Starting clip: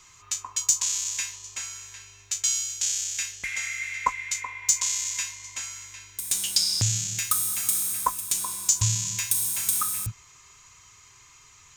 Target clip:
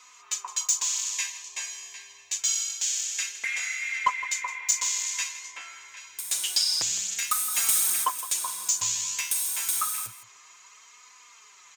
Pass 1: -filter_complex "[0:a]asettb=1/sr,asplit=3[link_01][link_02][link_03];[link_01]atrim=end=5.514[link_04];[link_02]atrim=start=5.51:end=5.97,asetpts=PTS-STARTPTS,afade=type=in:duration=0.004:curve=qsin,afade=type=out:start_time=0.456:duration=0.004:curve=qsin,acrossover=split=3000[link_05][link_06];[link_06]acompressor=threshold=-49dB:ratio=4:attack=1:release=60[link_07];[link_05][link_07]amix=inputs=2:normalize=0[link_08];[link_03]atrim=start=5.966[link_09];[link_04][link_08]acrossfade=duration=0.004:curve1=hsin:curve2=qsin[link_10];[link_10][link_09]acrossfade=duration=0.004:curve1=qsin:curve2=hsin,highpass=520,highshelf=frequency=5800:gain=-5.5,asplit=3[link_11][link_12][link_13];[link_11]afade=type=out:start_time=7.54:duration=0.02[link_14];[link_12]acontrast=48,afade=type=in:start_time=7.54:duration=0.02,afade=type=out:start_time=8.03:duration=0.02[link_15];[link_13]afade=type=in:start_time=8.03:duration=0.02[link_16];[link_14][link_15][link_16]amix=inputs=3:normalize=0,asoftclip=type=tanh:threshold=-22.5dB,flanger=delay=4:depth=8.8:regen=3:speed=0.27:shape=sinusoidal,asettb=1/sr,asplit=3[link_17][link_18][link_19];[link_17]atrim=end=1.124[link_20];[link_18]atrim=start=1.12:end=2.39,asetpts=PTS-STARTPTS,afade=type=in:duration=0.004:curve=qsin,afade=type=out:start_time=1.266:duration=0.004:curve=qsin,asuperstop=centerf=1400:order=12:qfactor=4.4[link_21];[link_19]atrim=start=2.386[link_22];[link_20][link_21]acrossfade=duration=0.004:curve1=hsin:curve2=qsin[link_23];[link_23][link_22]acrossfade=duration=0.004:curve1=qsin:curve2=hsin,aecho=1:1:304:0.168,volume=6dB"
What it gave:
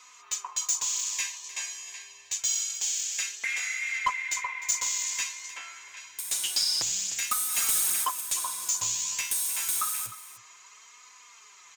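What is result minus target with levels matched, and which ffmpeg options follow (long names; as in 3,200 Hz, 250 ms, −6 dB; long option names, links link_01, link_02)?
echo 141 ms late; soft clipping: distortion +6 dB
-filter_complex "[0:a]asettb=1/sr,asplit=3[link_01][link_02][link_03];[link_01]atrim=end=5.514[link_04];[link_02]atrim=start=5.51:end=5.97,asetpts=PTS-STARTPTS,afade=type=in:duration=0.004:curve=qsin,afade=type=out:start_time=0.456:duration=0.004:curve=qsin,acrossover=split=3000[link_05][link_06];[link_06]acompressor=threshold=-49dB:ratio=4:attack=1:release=60[link_07];[link_05][link_07]amix=inputs=2:normalize=0[link_08];[link_03]atrim=start=5.966[link_09];[link_04][link_08]acrossfade=duration=0.004:curve1=hsin:curve2=qsin[link_10];[link_10][link_09]acrossfade=duration=0.004:curve1=qsin:curve2=hsin,highpass=520,highshelf=frequency=5800:gain=-5.5,asplit=3[link_11][link_12][link_13];[link_11]afade=type=out:start_time=7.54:duration=0.02[link_14];[link_12]acontrast=48,afade=type=in:start_time=7.54:duration=0.02,afade=type=out:start_time=8.03:duration=0.02[link_15];[link_13]afade=type=in:start_time=8.03:duration=0.02[link_16];[link_14][link_15][link_16]amix=inputs=3:normalize=0,asoftclip=type=tanh:threshold=-16.5dB,flanger=delay=4:depth=8.8:regen=3:speed=0.27:shape=sinusoidal,asettb=1/sr,asplit=3[link_17][link_18][link_19];[link_17]atrim=end=1.124[link_20];[link_18]atrim=start=1.12:end=2.39,asetpts=PTS-STARTPTS,afade=type=in:duration=0.004:curve=qsin,afade=type=out:start_time=1.266:duration=0.004:curve=qsin,asuperstop=centerf=1400:order=12:qfactor=4.4[link_21];[link_19]atrim=start=2.386[link_22];[link_20][link_21]acrossfade=duration=0.004:curve1=hsin:curve2=qsin[link_23];[link_23][link_22]acrossfade=duration=0.004:curve1=qsin:curve2=hsin,aecho=1:1:163:0.168,volume=6dB"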